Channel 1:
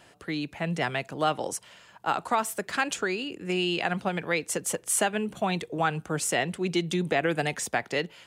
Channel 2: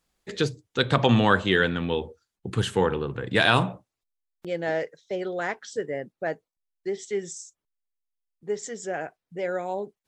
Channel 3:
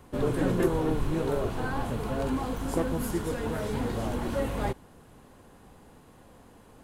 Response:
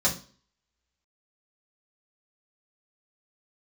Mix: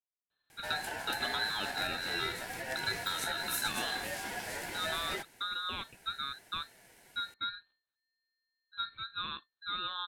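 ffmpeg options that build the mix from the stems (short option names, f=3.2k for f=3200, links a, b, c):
-filter_complex "[1:a]aeval=exprs='(tanh(2.24*val(0)+0.65)-tanh(0.65))/2.24':c=same,adelay=300,volume=-5dB[a];[2:a]flanger=delay=2.4:depth=7.8:regen=62:speed=0.58:shape=sinusoidal,alimiter=level_in=0.5dB:limit=-24dB:level=0:latency=1:release=111,volume=-0.5dB,highpass=390,adelay=500,volume=1dB[b];[a]lowpass=f=2.6k:t=q:w=0.5098,lowpass=f=2.6k:t=q:w=0.6013,lowpass=f=2.6k:t=q:w=0.9,lowpass=f=2.6k:t=q:w=2.563,afreqshift=-3000,acompressor=threshold=-36dB:ratio=6,volume=0dB[c];[b][c]amix=inputs=2:normalize=0,highshelf=f=2.5k:g=11.5,aeval=exprs='val(0)*sin(2*PI*1200*n/s)':c=same"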